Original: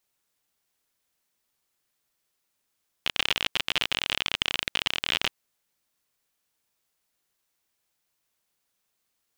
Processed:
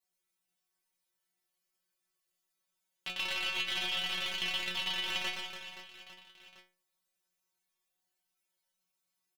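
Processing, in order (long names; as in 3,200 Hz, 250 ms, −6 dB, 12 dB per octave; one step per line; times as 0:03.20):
stiff-string resonator 180 Hz, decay 0.4 s, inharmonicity 0.002
on a send: reverse bouncing-ball delay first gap 120 ms, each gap 1.4×, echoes 5
on the sum: level +4.5 dB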